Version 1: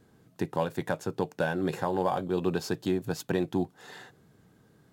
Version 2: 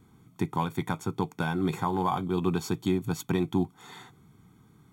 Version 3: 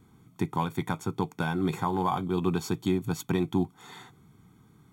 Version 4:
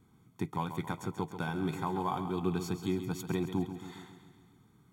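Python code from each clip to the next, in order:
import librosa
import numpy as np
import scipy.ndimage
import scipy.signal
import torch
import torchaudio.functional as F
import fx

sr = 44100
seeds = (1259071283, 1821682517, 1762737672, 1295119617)

y1 = fx.peak_eq(x, sr, hz=4900.0, db=-10.0, octaves=0.22)
y1 = y1 + 0.82 * np.pad(y1, (int(0.9 * sr / 1000.0), 0))[:len(y1)]
y2 = y1
y3 = fx.echo_feedback(y2, sr, ms=136, feedback_pct=58, wet_db=-10)
y3 = F.gain(torch.from_numpy(y3), -6.0).numpy()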